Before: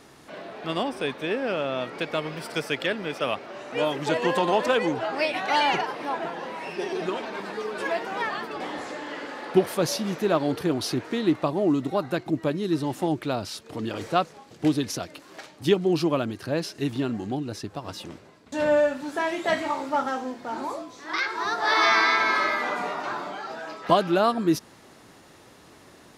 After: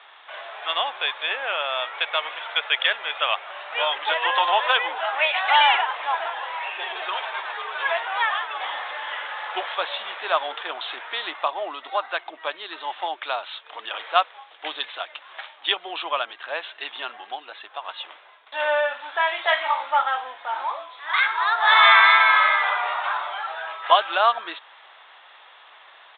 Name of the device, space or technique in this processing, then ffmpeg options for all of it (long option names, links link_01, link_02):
musical greeting card: -af "aresample=8000,aresample=44100,highpass=frequency=780:width=0.5412,highpass=frequency=780:width=1.3066,equalizer=frequency=3400:width_type=o:width=0.28:gain=5,volume=7dB"